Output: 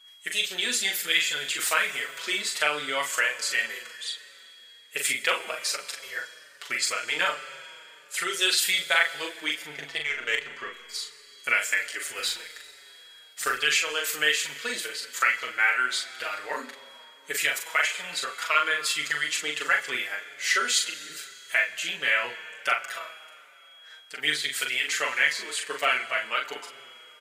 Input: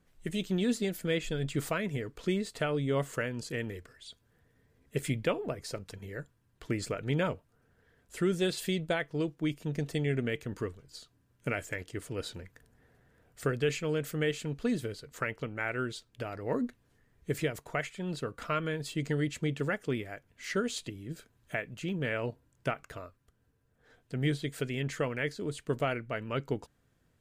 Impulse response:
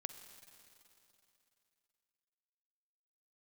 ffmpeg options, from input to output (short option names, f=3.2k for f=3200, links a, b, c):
-filter_complex "[0:a]highpass=1.5k,asettb=1/sr,asplit=3[a][b][c];[a]atrim=end=9.624[d];[b]atrim=start=9.62:end=10.73,asetpts=PTS-STARTPTS,afade=t=in:d=0.004:c=qsin,afade=t=out:st=1.106:d=0.004:c=qsin,adynamicsmooth=sensitivity=5:basefreq=2.4k[e];[c]atrim=start=10.726[f];[d][e]acrossfade=d=0.004:c1=hsin:c2=qsin[g];[g][f]acrossfade=d=0.004:c1=qsin:c2=hsin,asettb=1/sr,asplit=3[h][i][j];[h]atrim=end=12.034[k];[i]atrim=start=12.03:end=13.53,asetpts=PTS-STARTPTS,afade=t=in:d=0.004:c=qsin,afade=t=out:st=1.496:d=0.004:c=qsin,acrusher=bits=3:mode=log:mix=0:aa=0.000001[l];[j]atrim=start=13.526[m];[k][l]acrossfade=d=0.004:c1=hsin:c2=qsin[n];[n][m]acrossfade=d=0.004:c1=qsin:c2=hsin,aeval=exprs='val(0)+0.000355*sin(2*PI*3300*n/s)':c=same,asplit=2[o][p];[p]adelay=40,volume=-4.5dB[q];[o][q]amix=inputs=2:normalize=0,asplit=2[r][s];[1:a]atrim=start_sample=2205,lowshelf=f=80:g=10[t];[s][t]afir=irnorm=-1:irlink=0,volume=7.5dB[u];[r][u]amix=inputs=2:normalize=0,aresample=32000,aresample=44100,asplit=2[v][w];[w]adelay=5.7,afreqshift=-1.3[x];[v][x]amix=inputs=2:normalize=1,volume=9dB"